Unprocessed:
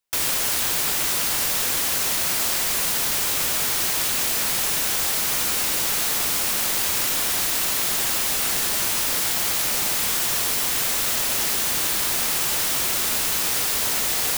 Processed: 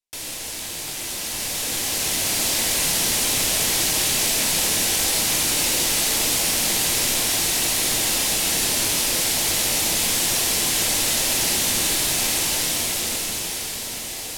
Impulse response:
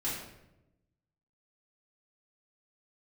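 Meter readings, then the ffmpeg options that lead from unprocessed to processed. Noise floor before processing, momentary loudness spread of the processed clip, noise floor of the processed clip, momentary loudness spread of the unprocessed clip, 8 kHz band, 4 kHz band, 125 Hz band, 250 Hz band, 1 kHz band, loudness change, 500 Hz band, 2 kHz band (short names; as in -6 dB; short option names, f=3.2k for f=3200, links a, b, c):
-23 dBFS, 8 LU, -32 dBFS, 0 LU, +3.0 dB, +3.0 dB, +4.5 dB, +5.0 dB, -0.5 dB, +0.5 dB, +3.0 dB, +1.0 dB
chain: -filter_complex "[0:a]lowpass=12k,equalizer=f=1.3k:w=1.5:g=-8.5,dynaudnorm=f=270:g=13:m=13dB,asplit=2[a][b];[1:a]atrim=start_sample=2205[c];[b][c]afir=irnorm=-1:irlink=0,volume=-8dB[d];[a][d]amix=inputs=2:normalize=0,volume=-8.5dB"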